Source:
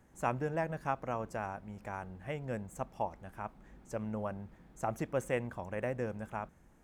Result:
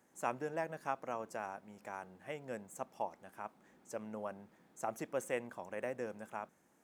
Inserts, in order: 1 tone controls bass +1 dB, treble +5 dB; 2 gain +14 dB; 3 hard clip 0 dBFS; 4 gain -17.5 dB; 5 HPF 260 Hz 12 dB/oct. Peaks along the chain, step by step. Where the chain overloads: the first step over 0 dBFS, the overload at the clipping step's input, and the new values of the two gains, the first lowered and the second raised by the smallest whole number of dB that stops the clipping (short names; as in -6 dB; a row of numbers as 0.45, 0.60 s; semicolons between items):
-17.5, -3.5, -3.5, -21.0, -20.0 dBFS; no overload